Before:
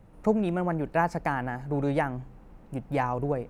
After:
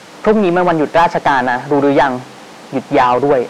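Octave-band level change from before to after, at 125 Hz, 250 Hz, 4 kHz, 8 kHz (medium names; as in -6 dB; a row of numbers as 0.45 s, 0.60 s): +6.0 dB, +13.0 dB, +22.5 dB, no reading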